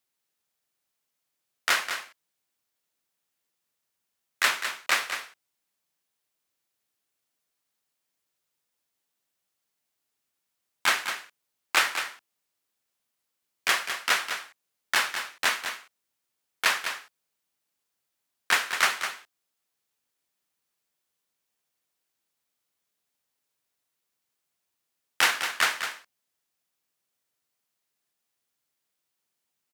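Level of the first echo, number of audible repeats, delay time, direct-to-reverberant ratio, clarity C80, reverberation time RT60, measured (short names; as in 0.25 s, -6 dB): -8.5 dB, 1, 0.205 s, none, none, none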